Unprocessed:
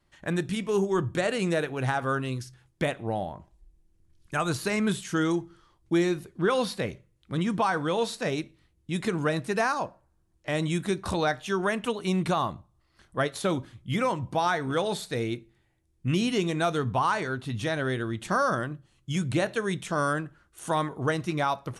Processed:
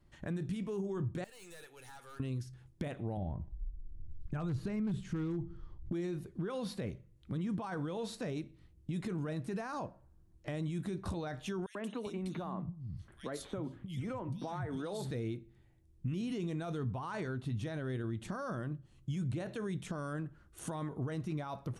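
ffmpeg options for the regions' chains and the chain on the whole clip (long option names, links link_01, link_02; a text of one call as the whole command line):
ffmpeg -i in.wav -filter_complex "[0:a]asettb=1/sr,asplit=3[link_01][link_02][link_03];[link_01]atrim=end=1.244[link_04];[link_02]atrim=start=1.24:end=2.2,asetpts=PTS-STARTPTS,afade=type=in:duration=0.004:curve=qsin,afade=type=out:start_time=0.956:duration=0.004:curve=qsin,aderivative,aecho=1:1:2.3:0.39,atrim=end_sample=42336,aeval=exprs='(tanh(200*val(0)+0.2)-tanh(0.2))/200':channel_layout=same[link_05];[link_03]atrim=start=2.196[link_06];[link_04][link_05]acrossfade=duration=0.004:curve1=hsin:curve2=qsin[link_07];[link_07][link_06]acrossfade=duration=0.004:curve1=qsin:curve2=hsin,asettb=1/sr,asplit=3[link_08][link_09][link_10];[link_08]atrim=end=3.174[link_11];[link_09]atrim=start=3.17:end=5.93,asetpts=PTS-STARTPTS,afade=type=in:duration=0.004:curve=qsin,afade=type=out:start_time=2.756:duration=0.004:curve=qsin,aemphasis=mode=reproduction:type=bsi,aeval=exprs='0.158*(abs(mod(val(0)/0.158+3,4)-2)-1)':channel_layout=same[link_12];[link_10]atrim=start=5.926[link_13];[link_11][link_12]acrossfade=duration=0.004:curve1=hsin:curve2=qsin[link_14];[link_14][link_13]acrossfade=duration=0.004:curve1=qsin:curve2=hsin,asettb=1/sr,asplit=3[link_15][link_16][link_17];[link_15]atrim=end=11.664[link_18];[link_16]atrim=start=11.66:end=15.11,asetpts=PTS-STARTPTS,afade=type=in:duration=0.004:curve=qsin,afade=type=out:start_time=3.446:duration=0.004:curve=qsin,acompressor=threshold=-28dB:ratio=10:attack=3.2:release=140:knee=1:detection=peak,acrossover=split=170|2600[link_19][link_20][link_21];[link_20]adelay=90[link_22];[link_19]adelay=400[link_23];[link_23][link_22][link_21]amix=inputs=3:normalize=0,atrim=end_sample=152145[link_24];[link_17]atrim=start=15.106[link_25];[link_18][link_24]acrossfade=duration=0.004:curve1=hsin:curve2=qsin[link_26];[link_26][link_25]acrossfade=duration=0.004:curve1=qsin:curve2=hsin,alimiter=limit=-24dB:level=0:latency=1:release=20,lowshelf=frequency=450:gain=11.5,acompressor=threshold=-36dB:ratio=2,volume=-5dB" out.wav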